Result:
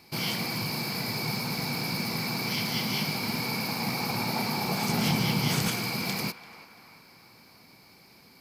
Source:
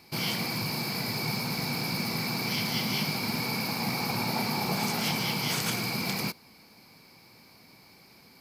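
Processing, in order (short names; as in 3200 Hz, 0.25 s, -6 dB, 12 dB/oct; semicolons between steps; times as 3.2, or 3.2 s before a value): 4.89–5.68 low shelf 290 Hz +9.5 dB; narrowing echo 0.34 s, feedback 58%, band-pass 1300 Hz, level -13.5 dB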